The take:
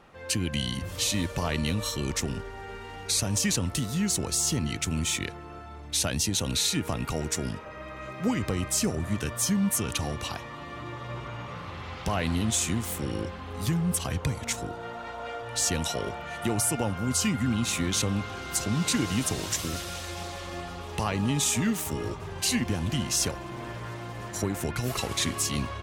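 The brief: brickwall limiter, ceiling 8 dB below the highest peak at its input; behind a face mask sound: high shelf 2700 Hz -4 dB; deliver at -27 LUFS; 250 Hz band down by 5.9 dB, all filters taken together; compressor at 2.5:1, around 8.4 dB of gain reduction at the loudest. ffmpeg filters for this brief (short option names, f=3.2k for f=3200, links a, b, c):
-af "equalizer=f=250:t=o:g=-8,acompressor=threshold=-36dB:ratio=2.5,alimiter=level_in=4dB:limit=-24dB:level=0:latency=1,volume=-4dB,highshelf=f=2.7k:g=-4,volume=12.5dB"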